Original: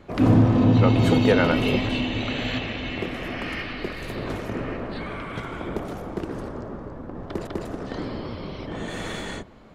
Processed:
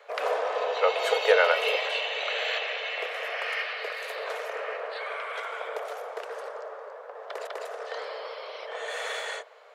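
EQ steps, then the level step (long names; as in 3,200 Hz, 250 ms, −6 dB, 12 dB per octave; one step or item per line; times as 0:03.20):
Chebyshev high-pass with heavy ripple 440 Hz, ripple 3 dB
+2.5 dB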